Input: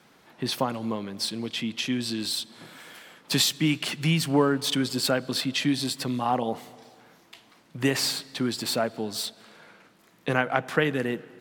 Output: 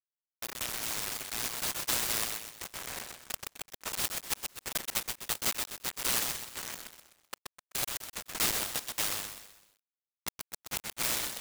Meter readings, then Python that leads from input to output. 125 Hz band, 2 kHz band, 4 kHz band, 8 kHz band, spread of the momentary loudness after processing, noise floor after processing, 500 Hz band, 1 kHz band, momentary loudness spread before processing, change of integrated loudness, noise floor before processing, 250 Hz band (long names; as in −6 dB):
−19.5 dB, −7.0 dB, −7.5 dB, +1.0 dB, 13 LU, below −85 dBFS, −17.0 dB, −10.5 dB, 11 LU, −6.5 dB, −59 dBFS, −22.0 dB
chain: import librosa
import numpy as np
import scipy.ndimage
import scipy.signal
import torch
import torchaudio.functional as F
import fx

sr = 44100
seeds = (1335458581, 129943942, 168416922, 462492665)

p1 = fx.fade_in_head(x, sr, length_s=3.01)
p2 = fx.level_steps(p1, sr, step_db=24)
p3 = p1 + F.gain(torch.from_numpy(p2), 1.5).numpy()
p4 = fx.gate_flip(p3, sr, shuts_db=-14.0, range_db=-37)
p5 = np.clip(p4, -10.0 ** (-23.0 / 20.0), 10.0 ** (-23.0 / 20.0))
p6 = fx.env_lowpass_down(p5, sr, base_hz=330.0, full_db=-26.5)
p7 = fx.quant_dither(p6, sr, seeds[0], bits=6, dither='none')
p8 = p7 + fx.echo_feedback(p7, sr, ms=127, feedback_pct=41, wet_db=-4.5, dry=0)
p9 = np.repeat(p8[::8], 8)[:len(p8)]
p10 = fx.freq_invert(p9, sr, carrier_hz=3900)
y = fx.noise_mod_delay(p10, sr, seeds[1], noise_hz=4700.0, depth_ms=0.1)